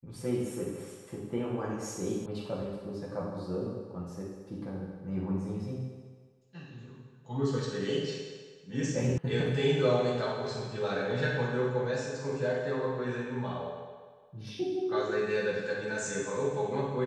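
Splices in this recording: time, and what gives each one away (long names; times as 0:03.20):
0:02.26: cut off before it has died away
0:09.18: cut off before it has died away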